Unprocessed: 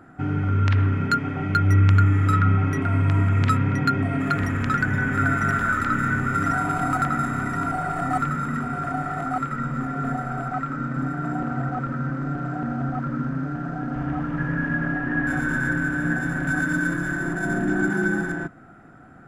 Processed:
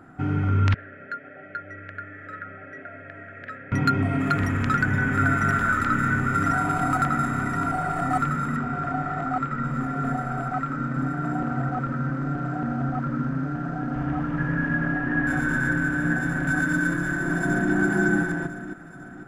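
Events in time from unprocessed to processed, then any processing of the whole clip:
0:00.74–0:03.72: pair of resonant band-passes 1,000 Hz, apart 1.5 octaves
0:08.56–0:09.65: high-frequency loss of the air 87 metres
0:16.79–0:17.73: delay throw 500 ms, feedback 45%, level −5.5 dB

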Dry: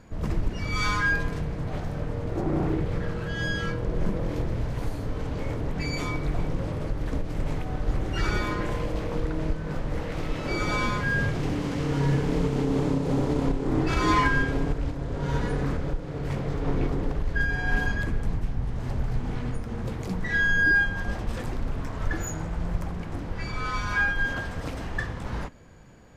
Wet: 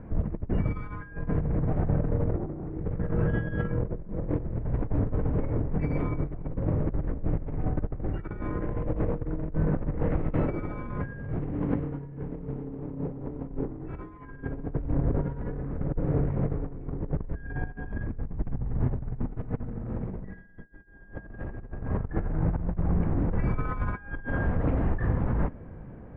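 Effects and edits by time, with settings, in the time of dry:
0:19.21–0:21.77: thrown reverb, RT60 2.7 s, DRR −4 dB
whole clip: low-pass filter 2,200 Hz 24 dB per octave; compressor whose output falls as the input rises −31 dBFS, ratio −0.5; tilt shelving filter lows +7 dB; level −3.5 dB

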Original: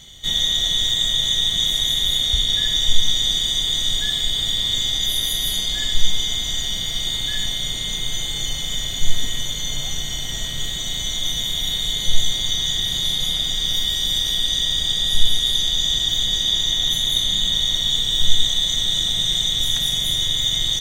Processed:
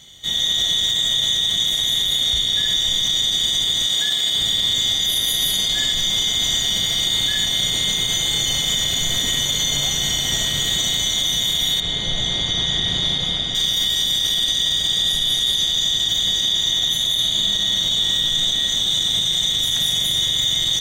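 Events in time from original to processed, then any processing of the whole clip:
0:03.85–0:04.35: high-pass filter 270 Hz 6 dB per octave
0:11.80–0:13.55: head-to-tape spacing loss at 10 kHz 21 dB
0:17.00–0:18.45: thrown reverb, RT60 2.7 s, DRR −2.5 dB
whole clip: high-pass filter 120 Hz 6 dB per octave; automatic gain control; brickwall limiter −9.5 dBFS; level −1.5 dB

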